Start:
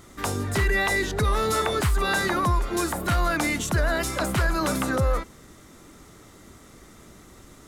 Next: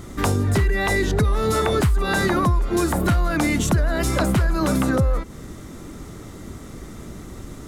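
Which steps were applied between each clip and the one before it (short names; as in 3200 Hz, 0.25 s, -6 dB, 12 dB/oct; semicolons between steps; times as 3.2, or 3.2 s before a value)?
low shelf 450 Hz +9.5 dB; compressor, threshold -22 dBFS, peak gain reduction 11.5 dB; gain +5.5 dB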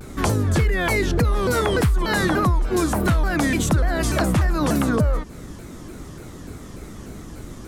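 shaped vibrato saw down 3.4 Hz, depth 250 cents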